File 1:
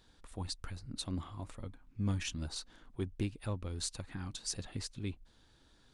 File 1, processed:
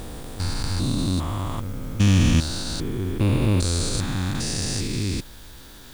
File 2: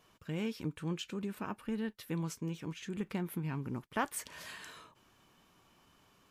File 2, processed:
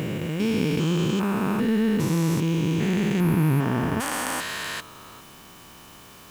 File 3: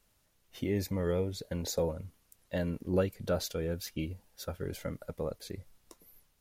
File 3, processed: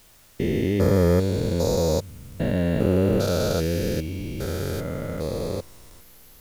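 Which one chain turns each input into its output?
stepped spectrum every 0.4 s; requantised 12-bit, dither triangular; match loudness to -24 LUFS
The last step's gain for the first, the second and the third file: +21.5, +20.0, +16.0 dB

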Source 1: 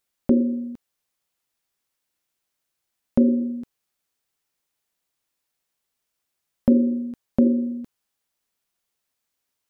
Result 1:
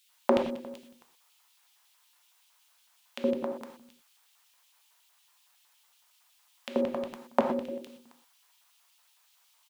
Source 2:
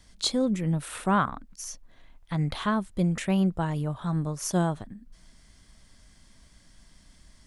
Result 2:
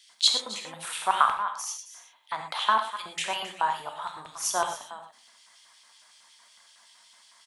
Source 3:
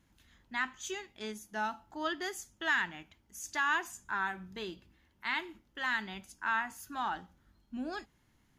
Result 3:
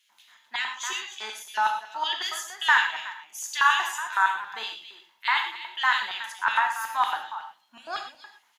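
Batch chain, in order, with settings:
echo 0.268 s -13.5 dB; LFO high-pass square 5.4 Hz 950–3000 Hz; non-linear reverb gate 0.14 s flat, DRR 4 dB; normalise peaks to -6 dBFS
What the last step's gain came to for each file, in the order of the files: +11.0, +1.5, +6.5 dB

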